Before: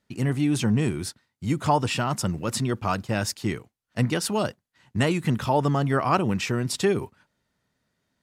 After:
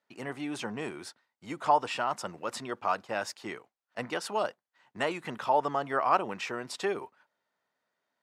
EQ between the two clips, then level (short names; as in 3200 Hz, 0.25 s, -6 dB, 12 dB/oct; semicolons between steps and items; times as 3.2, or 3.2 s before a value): band-pass 750 Hz, Q 0.96; tilt +3 dB/oct; 0.0 dB